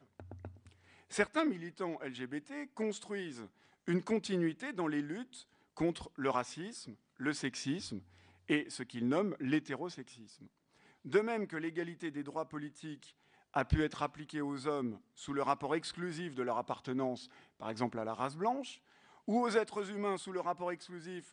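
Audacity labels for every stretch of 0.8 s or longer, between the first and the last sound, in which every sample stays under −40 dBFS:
10.020000	11.070000	silence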